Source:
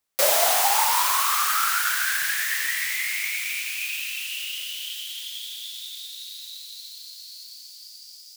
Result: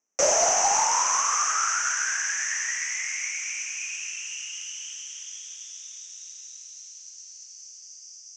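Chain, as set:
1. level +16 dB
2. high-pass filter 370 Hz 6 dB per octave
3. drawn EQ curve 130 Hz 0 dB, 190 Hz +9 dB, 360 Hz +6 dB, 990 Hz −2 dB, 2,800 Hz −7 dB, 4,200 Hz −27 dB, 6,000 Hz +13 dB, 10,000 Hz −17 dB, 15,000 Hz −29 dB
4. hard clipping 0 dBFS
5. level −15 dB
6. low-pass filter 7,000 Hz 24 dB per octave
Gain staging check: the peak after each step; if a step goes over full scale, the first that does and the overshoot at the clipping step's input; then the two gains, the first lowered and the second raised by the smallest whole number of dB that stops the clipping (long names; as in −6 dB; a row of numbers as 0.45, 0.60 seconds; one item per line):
+9.0, +9.0, +8.0, 0.0, −15.0, −13.0 dBFS
step 1, 8.0 dB
step 1 +8 dB, step 5 −7 dB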